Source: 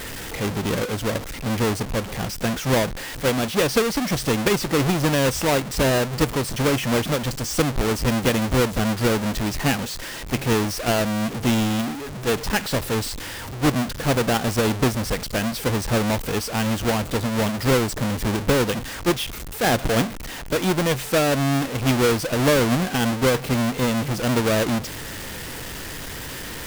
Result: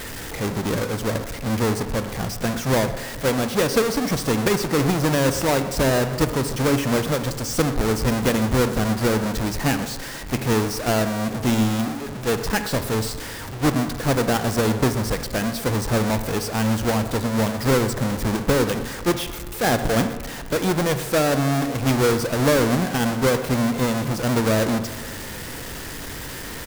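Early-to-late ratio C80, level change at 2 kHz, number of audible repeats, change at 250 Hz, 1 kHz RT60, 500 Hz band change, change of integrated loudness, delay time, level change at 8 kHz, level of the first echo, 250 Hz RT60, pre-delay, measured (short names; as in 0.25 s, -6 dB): 11.5 dB, -1.0 dB, 1, +0.5 dB, 1.4 s, +0.5 dB, 0.0 dB, 0.123 s, 0.0 dB, -18.0 dB, 1.5 s, 38 ms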